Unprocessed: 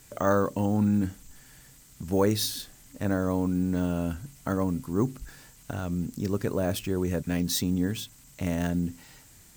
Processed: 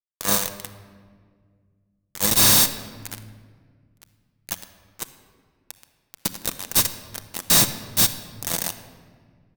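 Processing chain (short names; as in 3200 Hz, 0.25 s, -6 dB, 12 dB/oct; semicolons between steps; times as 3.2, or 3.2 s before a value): per-bin compression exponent 0.2; pre-emphasis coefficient 0.8; notches 60/120/180/240/300/360/420/480 Hz; gate -22 dBFS, range -45 dB; comb 1.1 ms, depth 50%; sample leveller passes 3; compressor, threshold -30 dBFS, peak gain reduction 10.5 dB; fuzz box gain 58 dB, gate -58 dBFS; shoebox room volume 2800 m³, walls mixed, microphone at 0.73 m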